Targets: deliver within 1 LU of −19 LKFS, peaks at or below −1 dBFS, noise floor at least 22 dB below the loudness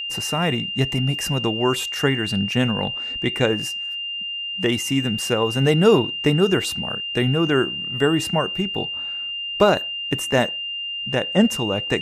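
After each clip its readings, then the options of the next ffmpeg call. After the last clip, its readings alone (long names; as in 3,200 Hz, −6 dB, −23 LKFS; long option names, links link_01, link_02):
interfering tone 2,800 Hz; level of the tone −26 dBFS; integrated loudness −21.0 LKFS; sample peak −2.5 dBFS; target loudness −19.0 LKFS
→ -af "bandreject=frequency=2800:width=30"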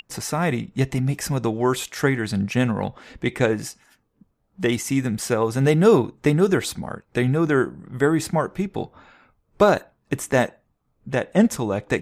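interfering tone none found; integrated loudness −22.0 LKFS; sample peak −3.0 dBFS; target loudness −19.0 LKFS
→ -af "volume=3dB,alimiter=limit=-1dB:level=0:latency=1"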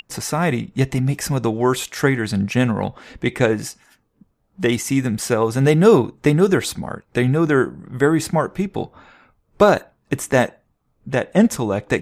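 integrated loudness −19.5 LKFS; sample peak −1.0 dBFS; background noise floor −67 dBFS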